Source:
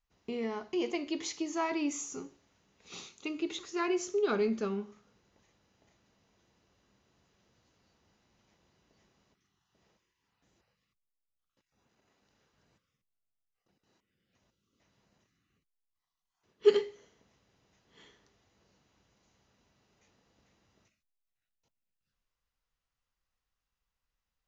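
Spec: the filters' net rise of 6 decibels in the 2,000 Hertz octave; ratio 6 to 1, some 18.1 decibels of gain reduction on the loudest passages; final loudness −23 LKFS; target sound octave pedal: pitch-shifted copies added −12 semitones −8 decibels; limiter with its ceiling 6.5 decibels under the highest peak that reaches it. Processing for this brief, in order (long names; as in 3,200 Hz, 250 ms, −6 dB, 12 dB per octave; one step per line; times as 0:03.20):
parametric band 2,000 Hz +7.5 dB
downward compressor 6 to 1, threshold −37 dBFS
brickwall limiter −33.5 dBFS
pitch-shifted copies added −12 semitones −8 dB
level +20 dB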